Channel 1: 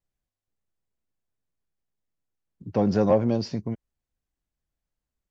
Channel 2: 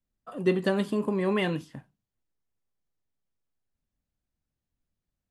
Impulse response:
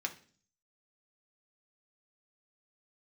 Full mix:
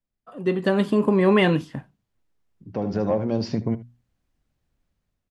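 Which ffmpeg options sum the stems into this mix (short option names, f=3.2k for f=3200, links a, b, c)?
-filter_complex "[0:a]acompressor=threshold=-23dB:ratio=2.5,bandreject=f=60:t=h:w=6,bandreject=f=120:t=h:w=6,bandreject=f=180:t=h:w=6,bandreject=f=240:t=h:w=6,volume=-5.5dB,asplit=2[a][b];[b]volume=-17.5dB[c];[1:a]volume=-3dB,asplit=2[d][e];[e]apad=whole_len=233938[f];[a][f]sidechaincompress=threshold=-48dB:ratio=8:attack=10:release=1420[g];[c]aecho=0:1:75:1[h];[g][d][h]amix=inputs=3:normalize=0,highshelf=f=6.1k:g=-10,dynaudnorm=f=280:g=5:m=13dB"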